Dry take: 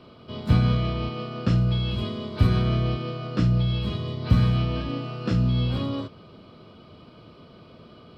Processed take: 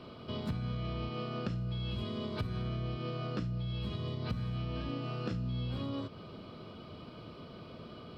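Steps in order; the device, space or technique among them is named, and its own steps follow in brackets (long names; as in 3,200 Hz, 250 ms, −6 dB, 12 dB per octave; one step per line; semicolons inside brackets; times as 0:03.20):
serial compression, peaks first (downward compressor 6 to 1, threshold −30 dBFS, peak gain reduction 16 dB; downward compressor 1.5 to 1, threshold −39 dBFS, peak gain reduction 5 dB)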